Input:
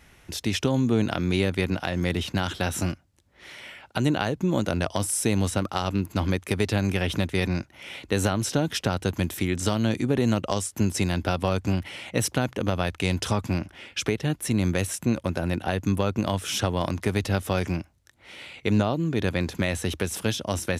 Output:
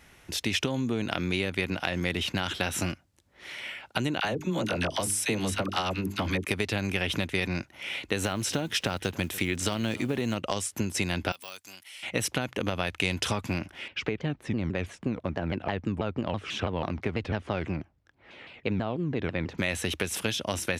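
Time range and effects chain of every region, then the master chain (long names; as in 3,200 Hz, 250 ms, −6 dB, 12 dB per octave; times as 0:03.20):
0:04.20–0:06.45: mains-hum notches 50/100/150/200/250/300/350/400 Hz + all-pass dispersion lows, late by 42 ms, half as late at 880 Hz
0:08.21–0:10.36: one scale factor per block 7 bits + single-tap delay 289 ms −21 dB
0:11.32–0:12.03: high-pass filter 42 Hz + de-essing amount 90% + first difference
0:13.88–0:19.58: head-to-tape spacing loss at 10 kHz 27 dB + pitch modulation by a square or saw wave saw down 6.1 Hz, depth 250 cents
whole clip: low-shelf EQ 150 Hz −5 dB; downward compressor, threshold −25 dBFS; dynamic equaliser 2,500 Hz, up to +6 dB, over −48 dBFS, Q 1.2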